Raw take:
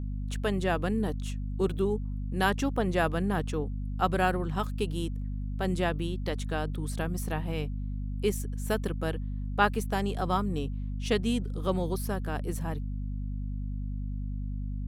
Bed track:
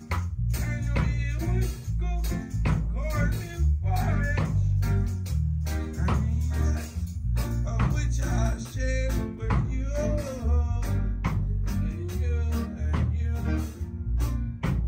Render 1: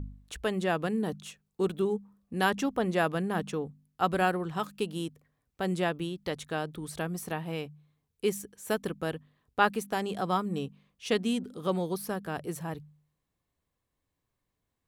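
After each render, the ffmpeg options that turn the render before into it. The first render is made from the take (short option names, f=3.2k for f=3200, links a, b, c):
-af "bandreject=f=50:t=h:w=4,bandreject=f=100:t=h:w=4,bandreject=f=150:t=h:w=4,bandreject=f=200:t=h:w=4,bandreject=f=250:t=h:w=4"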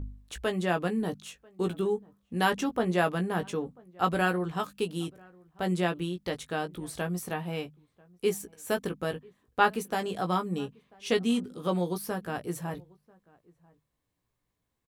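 -filter_complex "[0:a]asplit=2[a][b];[b]adelay=17,volume=-6.5dB[c];[a][c]amix=inputs=2:normalize=0,asplit=2[d][e];[e]adelay=991.3,volume=-26dB,highshelf=f=4k:g=-22.3[f];[d][f]amix=inputs=2:normalize=0"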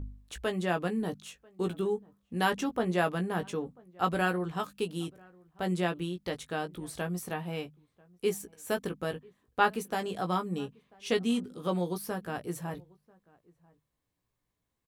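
-af "volume=-2dB"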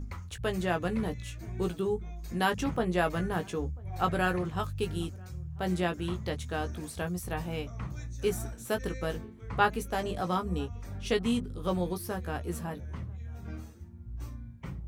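-filter_complex "[1:a]volume=-13.5dB[a];[0:a][a]amix=inputs=2:normalize=0"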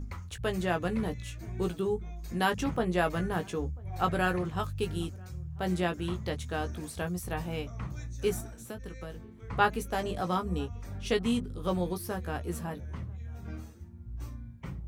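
-filter_complex "[0:a]asettb=1/sr,asplit=3[a][b][c];[a]atrim=end=8.404[d];[b]atrim=start=8.4:end=9.5,asetpts=PTS-STARTPTS,afade=t=in:d=0.004:c=qsin,afade=t=out:st=1.096:d=0.004:c=qsin,acrossover=split=180|590[e][f][g];[e]acompressor=threshold=-42dB:ratio=4[h];[f]acompressor=threshold=-47dB:ratio=4[i];[g]acompressor=threshold=-48dB:ratio=4[j];[h][i][j]amix=inputs=3:normalize=0[k];[c]atrim=start=9.496[l];[d][k]acrossfade=d=0.004:c1=hsin:c2=qsin[m];[m][l]acrossfade=d=0.004:c1=qsin:c2=hsin"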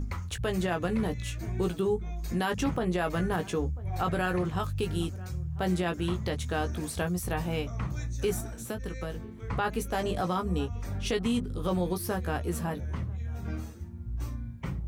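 -filter_complex "[0:a]asplit=2[a][b];[b]acompressor=threshold=-36dB:ratio=6,volume=0.5dB[c];[a][c]amix=inputs=2:normalize=0,alimiter=limit=-19dB:level=0:latency=1:release=33"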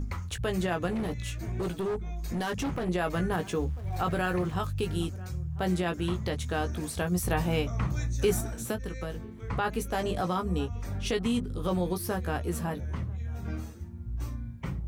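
-filter_complex "[0:a]asettb=1/sr,asplit=3[a][b][c];[a]atrim=end=0.914[d];[b]atrim=start=0.91:end=2.89,asetpts=PTS-STARTPTS,afade=t=in:d=0.004:c=qsin,afade=t=out:st=1.976:d=0.004:c=qsin,volume=27.5dB,asoftclip=hard,volume=-27.5dB[e];[c]atrim=start=2.886[f];[d][e]acrossfade=d=0.004:c1=hsin:c2=qsin[g];[g][f]acrossfade=d=0.004:c1=qsin:c2=hsin,asettb=1/sr,asplit=3[h][i][j];[h]atrim=end=3.464[k];[i]atrim=start=3.46:end=4.59,asetpts=PTS-STARTPTS,afade=t=in:d=0.004:c=qsin,afade=t=out:st=1.126:d=0.004:c=qsin,aeval=exprs='val(0)*gte(abs(val(0)),0.00422)':c=same[l];[j]atrim=start=4.586[m];[k][l]acrossfade=d=0.004:c1=hsin:c2=qsin[n];[n][m]acrossfade=d=0.004:c1=qsin:c2=hsin,asplit=3[o][p][q];[o]atrim=end=7.122[r];[p]atrim=start=7.118:end=8.762,asetpts=PTS-STARTPTS,volume=3.5dB[s];[q]atrim=start=8.758[t];[r][s]acrossfade=d=0.004:c1=hsin:c2=hsin[u];[u][t]acrossfade=d=0.004:c1=hsin:c2=hsin"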